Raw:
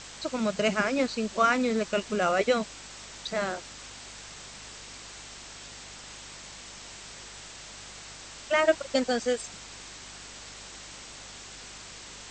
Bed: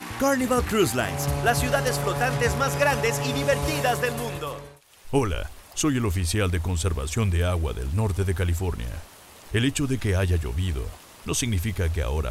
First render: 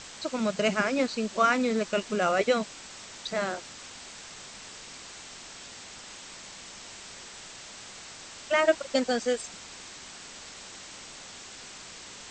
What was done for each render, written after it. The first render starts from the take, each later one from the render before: de-hum 50 Hz, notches 3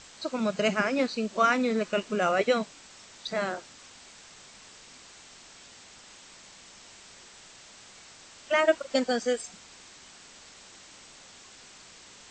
noise print and reduce 6 dB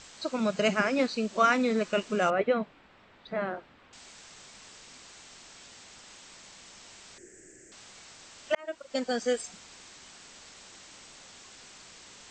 2.3–3.93 air absorption 490 m; 7.18–7.72 EQ curve 230 Hz 0 dB, 350 Hz +14 dB, 1100 Hz -27 dB, 1700 Hz +1 dB, 3800 Hz -29 dB, 7000 Hz +1 dB; 8.55–9.34 fade in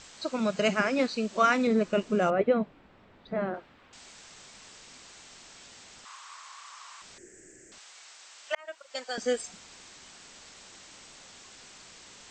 1.67–3.54 tilt shelf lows +5 dB, about 740 Hz; 6.05–7.02 resonant high-pass 1100 Hz, resonance Q 7.1; 7.78–9.18 HPF 770 Hz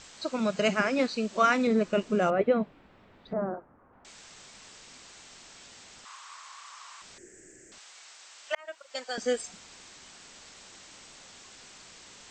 3.33–4.05 LPF 1300 Hz 24 dB/oct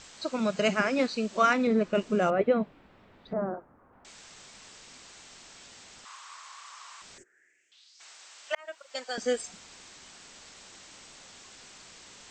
1.53–1.95 high shelf 6400 Hz -11.5 dB; 7.22–7.99 band-pass 1200 Hz -> 5400 Hz, Q 3.8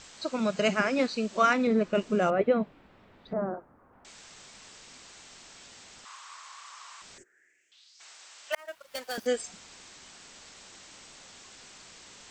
8.52–9.27 switching dead time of 0.059 ms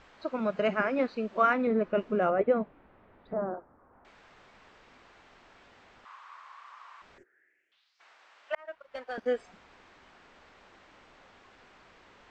LPF 1800 Hz 12 dB/oct; bell 160 Hz -5 dB 1.5 oct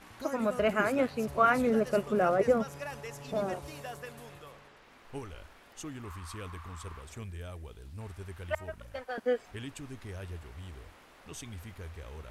add bed -19 dB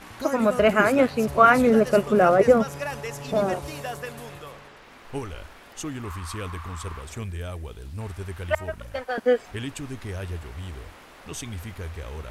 gain +9 dB

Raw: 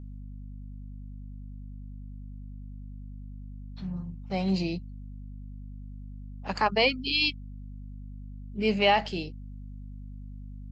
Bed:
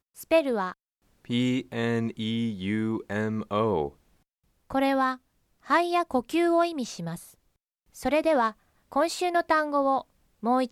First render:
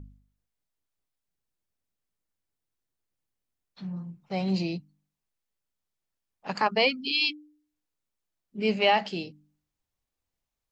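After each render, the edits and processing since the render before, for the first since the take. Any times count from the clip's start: de-hum 50 Hz, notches 6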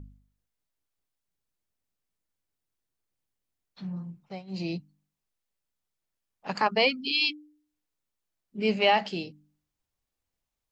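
4.19–4.71 dip -20.5 dB, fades 0.24 s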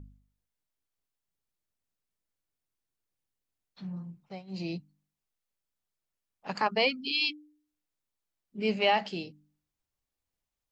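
gain -3 dB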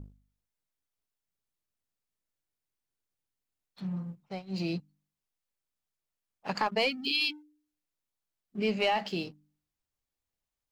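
sample leveller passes 1; compressor 2:1, threshold -28 dBFS, peak gain reduction 5.5 dB

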